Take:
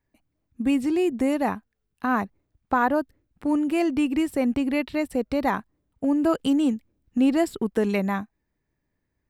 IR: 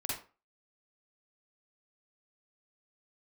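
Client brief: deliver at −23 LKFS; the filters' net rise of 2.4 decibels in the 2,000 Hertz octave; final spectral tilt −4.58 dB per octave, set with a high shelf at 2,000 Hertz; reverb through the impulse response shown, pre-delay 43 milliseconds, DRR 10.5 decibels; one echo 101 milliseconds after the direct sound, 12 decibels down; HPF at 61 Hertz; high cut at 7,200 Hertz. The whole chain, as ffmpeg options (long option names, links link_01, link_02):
-filter_complex "[0:a]highpass=61,lowpass=7200,highshelf=frequency=2000:gain=-4,equalizer=frequency=2000:width_type=o:gain=5.5,aecho=1:1:101:0.251,asplit=2[link_01][link_02];[1:a]atrim=start_sample=2205,adelay=43[link_03];[link_02][link_03]afir=irnorm=-1:irlink=0,volume=-13dB[link_04];[link_01][link_04]amix=inputs=2:normalize=0,volume=1dB"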